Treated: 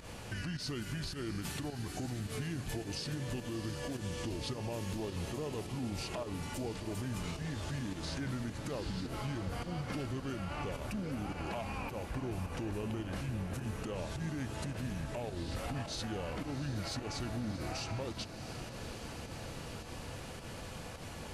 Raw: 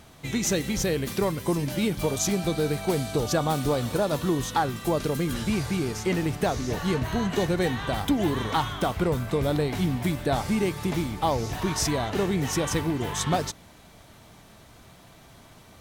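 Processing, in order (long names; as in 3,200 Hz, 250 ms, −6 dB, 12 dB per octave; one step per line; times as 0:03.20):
downward compressor 6 to 1, threshold −39 dBFS, peak gain reduction 18.5 dB
brickwall limiter −35.5 dBFS, peak gain reduction 9.5 dB
fake sidechain pumping 143 BPM, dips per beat 1, −13 dB, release 73 ms
feedback delay with all-pass diffusion 540 ms, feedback 72%, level −10.5 dB
wrong playback speed 45 rpm record played at 33 rpm
level +5 dB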